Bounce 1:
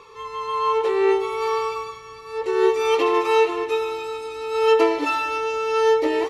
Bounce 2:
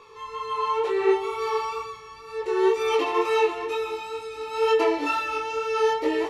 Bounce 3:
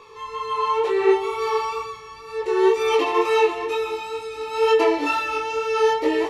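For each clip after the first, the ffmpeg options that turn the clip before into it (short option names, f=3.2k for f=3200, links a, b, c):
-af "flanger=delay=18.5:depth=3.1:speed=2.1"
-af "bandreject=f=1.4k:w=14,volume=3.5dB"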